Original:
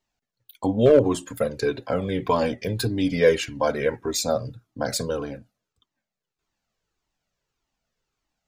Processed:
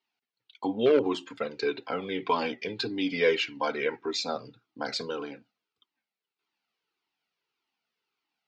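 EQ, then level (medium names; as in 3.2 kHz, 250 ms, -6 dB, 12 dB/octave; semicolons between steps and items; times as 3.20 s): cabinet simulation 440–4300 Hz, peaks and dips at 570 Hz -5 dB, 1.1 kHz -5 dB, 1.7 kHz -8 dB, 3.6 kHz -3 dB; peaking EQ 600 Hz -11 dB 0.67 oct; +3.5 dB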